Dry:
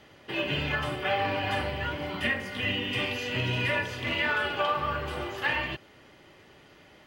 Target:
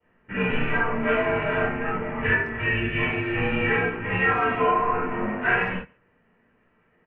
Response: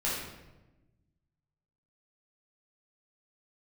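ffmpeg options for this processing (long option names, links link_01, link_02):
-filter_complex "[0:a]afwtdn=0.0126,highpass=frequency=200:width_type=q:width=0.5412,highpass=frequency=200:width_type=q:width=1.307,lowpass=frequency=2500:width_type=q:width=0.5176,lowpass=frequency=2500:width_type=q:width=0.7071,lowpass=frequency=2500:width_type=q:width=1.932,afreqshift=-140[link_01];[1:a]atrim=start_sample=2205,atrim=end_sample=4410[link_02];[link_01][link_02]afir=irnorm=-1:irlink=0,adynamicequalizer=threshold=0.0126:dfrequency=1700:dqfactor=4.4:tfrequency=1700:tqfactor=4.4:attack=5:release=100:ratio=0.375:range=2:mode=cutabove:tftype=bell,asplit=2[link_03][link_04];[link_04]adelay=140,highpass=300,lowpass=3400,asoftclip=type=hard:threshold=-16.5dB,volume=-25dB[link_05];[link_03][link_05]amix=inputs=2:normalize=0,volume=1.5dB"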